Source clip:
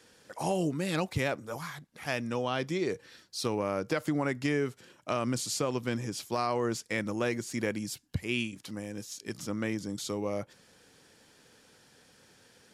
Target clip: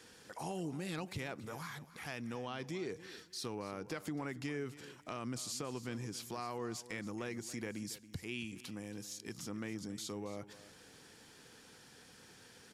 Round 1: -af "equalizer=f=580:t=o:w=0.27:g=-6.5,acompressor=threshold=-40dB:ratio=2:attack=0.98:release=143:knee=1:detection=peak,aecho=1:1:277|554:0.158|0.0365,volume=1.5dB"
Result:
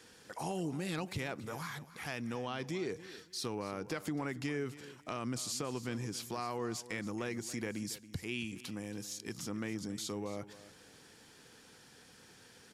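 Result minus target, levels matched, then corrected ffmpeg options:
compressor: peak gain reduction -3.5 dB
-af "equalizer=f=580:t=o:w=0.27:g=-6.5,acompressor=threshold=-46.5dB:ratio=2:attack=0.98:release=143:knee=1:detection=peak,aecho=1:1:277|554:0.158|0.0365,volume=1.5dB"

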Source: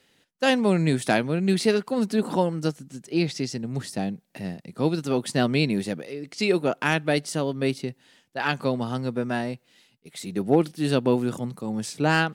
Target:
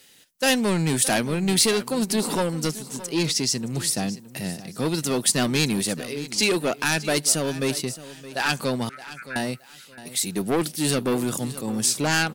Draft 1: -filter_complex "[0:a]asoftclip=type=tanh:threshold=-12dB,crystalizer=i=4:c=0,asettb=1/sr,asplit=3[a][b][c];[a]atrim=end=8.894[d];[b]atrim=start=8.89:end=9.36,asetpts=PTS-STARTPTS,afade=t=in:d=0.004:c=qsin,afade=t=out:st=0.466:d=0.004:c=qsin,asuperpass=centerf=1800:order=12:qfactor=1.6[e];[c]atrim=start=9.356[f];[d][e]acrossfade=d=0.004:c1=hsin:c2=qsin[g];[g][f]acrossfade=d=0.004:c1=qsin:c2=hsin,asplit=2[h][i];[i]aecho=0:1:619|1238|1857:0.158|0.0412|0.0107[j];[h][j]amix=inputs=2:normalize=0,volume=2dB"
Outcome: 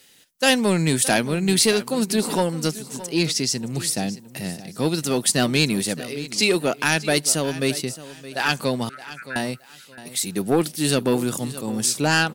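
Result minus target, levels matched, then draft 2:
soft clip: distortion -8 dB
-filter_complex "[0:a]asoftclip=type=tanh:threshold=-19.5dB,crystalizer=i=4:c=0,asettb=1/sr,asplit=3[a][b][c];[a]atrim=end=8.894[d];[b]atrim=start=8.89:end=9.36,asetpts=PTS-STARTPTS,afade=t=in:d=0.004:c=qsin,afade=t=out:st=0.466:d=0.004:c=qsin,asuperpass=centerf=1800:order=12:qfactor=1.6[e];[c]atrim=start=9.356[f];[d][e]acrossfade=d=0.004:c1=hsin:c2=qsin[g];[g][f]acrossfade=d=0.004:c1=qsin:c2=hsin,asplit=2[h][i];[i]aecho=0:1:619|1238|1857:0.158|0.0412|0.0107[j];[h][j]amix=inputs=2:normalize=0,volume=2dB"

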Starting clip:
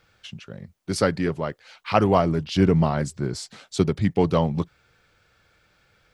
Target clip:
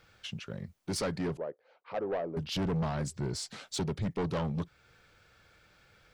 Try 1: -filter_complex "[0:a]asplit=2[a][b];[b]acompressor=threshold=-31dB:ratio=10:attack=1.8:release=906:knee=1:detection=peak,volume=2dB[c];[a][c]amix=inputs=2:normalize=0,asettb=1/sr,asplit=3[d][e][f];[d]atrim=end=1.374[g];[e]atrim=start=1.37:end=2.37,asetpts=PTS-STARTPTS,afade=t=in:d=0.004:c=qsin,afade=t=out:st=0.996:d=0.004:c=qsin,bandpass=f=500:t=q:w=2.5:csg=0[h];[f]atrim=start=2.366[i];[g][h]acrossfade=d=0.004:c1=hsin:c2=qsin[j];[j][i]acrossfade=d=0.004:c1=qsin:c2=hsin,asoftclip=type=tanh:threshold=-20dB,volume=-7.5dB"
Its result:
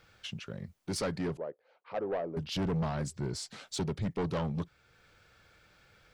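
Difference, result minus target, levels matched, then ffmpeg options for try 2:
compressor: peak gain reduction +6 dB
-filter_complex "[0:a]asplit=2[a][b];[b]acompressor=threshold=-24.5dB:ratio=10:attack=1.8:release=906:knee=1:detection=peak,volume=2dB[c];[a][c]amix=inputs=2:normalize=0,asettb=1/sr,asplit=3[d][e][f];[d]atrim=end=1.374[g];[e]atrim=start=1.37:end=2.37,asetpts=PTS-STARTPTS,afade=t=in:d=0.004:c=qsin,afade=t=out:st=0.996:d=0.004:c=qsin,bandpass=f=500:t=q:w=2.5:csg=0[h];[f]atrim=start=2.366[i];[g][h]acrossfade=d=0.004:c1=hsin:c2=qsin[j];[j][i]acrossfade=d=0.004:c1=qsin:c2=hsin,asoftclip=type=tanh:threshold=-20dB,volume=-7.5dB"

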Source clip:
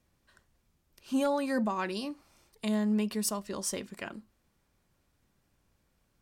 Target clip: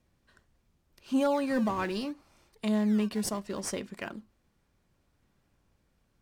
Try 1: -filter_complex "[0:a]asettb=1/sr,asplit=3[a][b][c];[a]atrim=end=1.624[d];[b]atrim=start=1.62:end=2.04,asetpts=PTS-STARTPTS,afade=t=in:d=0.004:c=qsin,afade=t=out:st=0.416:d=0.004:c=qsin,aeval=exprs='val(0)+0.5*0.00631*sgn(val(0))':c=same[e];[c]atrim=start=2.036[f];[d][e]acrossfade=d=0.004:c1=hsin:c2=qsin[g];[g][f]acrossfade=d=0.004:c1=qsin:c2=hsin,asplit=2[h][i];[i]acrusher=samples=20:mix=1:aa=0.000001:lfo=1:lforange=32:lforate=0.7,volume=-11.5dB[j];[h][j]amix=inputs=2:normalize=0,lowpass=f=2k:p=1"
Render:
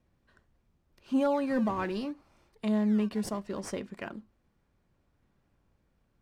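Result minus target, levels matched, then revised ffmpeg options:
8000 Hz band -8.0 dB
-filter_complex "[0:a]asettb=1/sr,asplit=3[a][b][c];[a]atrim=end=1.624[d];[b]atrim=start=1.62:end=2.04,asetpts=PTS-STARTPTS,afade=t=in:d=0.004:c=qsin,afade=t=out:st=0.416:d=0.004:c=qsin,aeval=exprs='val(0)+0.5*0.00631*sgn(val(0))':c=same[e];[c]atrim=start=2.036[f];[d][e]acrossfade=d=0.004:c1=hsin:c2=qsin[g];[g][f]acrossfade=d=0.004:c1=qsin:c2=hsin,asplit=2[h][i];[i]acrusher=samples=20:mix=1:aa=0.000001:lfo=1:lforange=32:lforate=0.7,volume=-11.5dB[j];[h][j]amix=inputs=2:normalize=0,lowpass=f=6.5k:p=1"

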